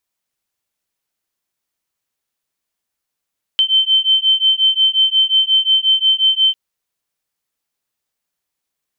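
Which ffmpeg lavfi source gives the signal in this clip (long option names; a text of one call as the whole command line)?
ffmpeg -f lavfi -i "aevalsrc='0.2*(sin(2*PI*3090*t)+sin(2*PI*3095.6*t))':duration=2.95:sample_rate=44100" out.wav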